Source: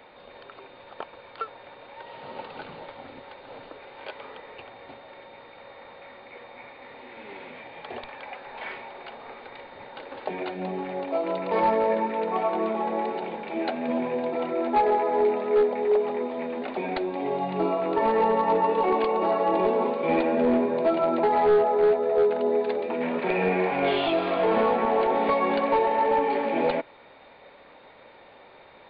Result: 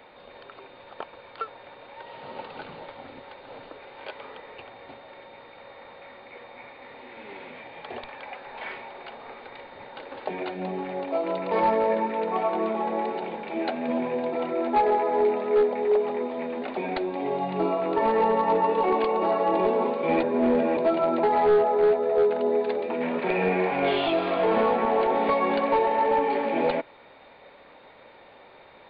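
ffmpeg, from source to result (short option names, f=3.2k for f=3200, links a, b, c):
-filter_complex "[0:a]asplit=3[a][b][c];[a]atrim=end=20.232[d];[b]atrim=start=20.228:end=20.772,asetpts=PTS-STARTPTS,areverse[e];[c]atrim=start=20.768[f];[d][e]acrossfade=d=0.004:c1=hsin:c2=hsin[g];[g][f]acrossfade=d=0.004:c1=hsin:c2=hsin"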